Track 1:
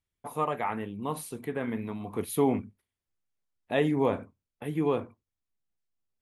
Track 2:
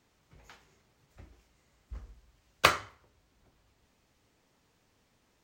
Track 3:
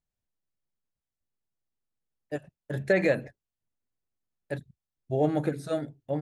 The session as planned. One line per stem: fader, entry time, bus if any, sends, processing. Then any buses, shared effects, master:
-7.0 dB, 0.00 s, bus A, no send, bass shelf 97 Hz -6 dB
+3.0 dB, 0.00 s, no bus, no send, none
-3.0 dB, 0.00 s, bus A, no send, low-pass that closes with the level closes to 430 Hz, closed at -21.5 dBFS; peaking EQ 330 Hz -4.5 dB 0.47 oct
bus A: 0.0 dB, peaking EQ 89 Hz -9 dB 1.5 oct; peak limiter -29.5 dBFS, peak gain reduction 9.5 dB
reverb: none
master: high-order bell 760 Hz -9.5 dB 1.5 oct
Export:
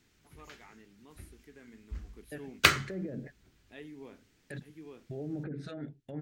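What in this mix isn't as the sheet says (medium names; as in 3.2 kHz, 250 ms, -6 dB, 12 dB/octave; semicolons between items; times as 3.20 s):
stem 1 -7.0 dB -> -18.5 dB; stem 3 -3.0 dB -> +3.5 dB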